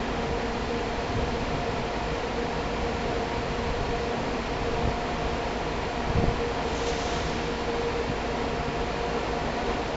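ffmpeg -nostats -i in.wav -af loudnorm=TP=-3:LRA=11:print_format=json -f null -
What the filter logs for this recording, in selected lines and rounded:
"input_i" : "-28.8",
"input_tp" : "-11.5",
"input_lra" : "0.8",
"input_thresh" : "-38.8",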